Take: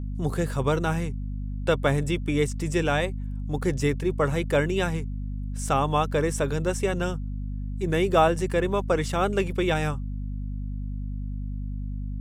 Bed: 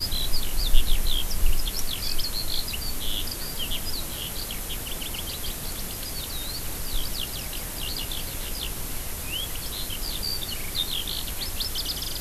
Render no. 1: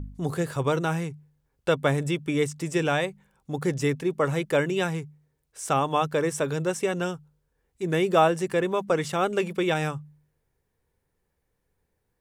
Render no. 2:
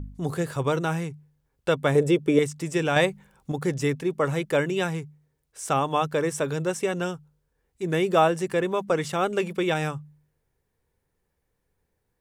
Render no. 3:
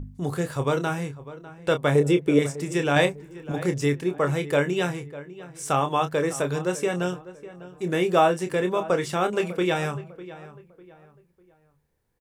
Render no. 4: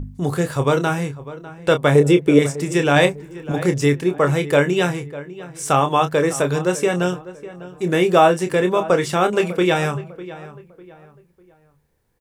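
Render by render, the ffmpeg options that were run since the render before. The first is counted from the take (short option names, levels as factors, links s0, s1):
-af "bandreject=f=50:t=h:w=4,bandreject=f=100:t=h:w=4,bandreject=f=150:t=h:w=4,bandreject=f=200:t=h:w=4,bandreject=f=250:t=h:w=4"
-filter_complex "[0:a]asettb=1/sr,asplit=3[s0][s1][s2];[s0]atrim=end=1.954[s3];[s1]atrim=start=1.95:end=2.39,asetpts=PTS-STARTPTS,afade=t=in:d=0.004:c=qsin,afade=t=out:st=0.436:d=0.004:c=qsin,equalizer=f=450:t=o:w=0.94:g=14[s4];[s2]atrim=start=2.386[s5];[s3][s4]acrossfade=d=0.004:c1=hsin:c2=qsin[s6];[s6][s5]acrossfade=d=0.004:c1=qsin:c2=hsin,asettb=1/sr,asplit=3[s7][s8][s9];[s7]atrim=end=2.964[s10];[s8]atrim=start=2.96:end=3.52,asetpts=PTS-STARTPTS,afade=t=in:d=0.004:c=qsin,afade=t=out:st=0.556:d=0.004:c=qsin,acontrast=62[s11];[s9]atrim=start=3.516[s12];[s10][s11]acrossfade=d=0.004:c1=hsin:c2=qsin[s13];[s13][s12]acrossfade=d=0.004:c1=qsin:c2=hsin"
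-filter_complex "[0:a]asplit=2[s0][s1];[s1]adelay=28,volume=0.398[s2];[s0][s2]amix=inputs=2:normalize=0,asplit=2[s3][s4];[s4]adelay=600,lowpass=f=2200:p=1,volume=0.158,asplit=2[s5][s6];[s6]adelay=600,lowpass=f=2200:p=1,volume=0.35,asplit=2[s7][s8];[s8]adelay=600,lowpass=f=2200:p=1,volume=0.35[s9];[s3][s5][s7][s9]amix=inputs=4:normalize=0"
-af "volume=2.11,alimiter=limit=0.794:level=0:latency=1"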